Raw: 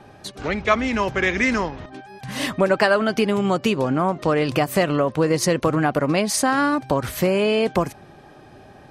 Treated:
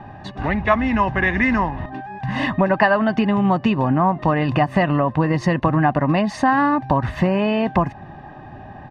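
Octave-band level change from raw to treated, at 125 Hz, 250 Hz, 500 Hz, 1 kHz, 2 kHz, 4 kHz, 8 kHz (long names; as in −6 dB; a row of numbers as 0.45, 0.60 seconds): +5.5 dB, +3.5 dB, −1.5 dB, +4.5 dB, +1.5 dB, −5.0 dB, below −15 dB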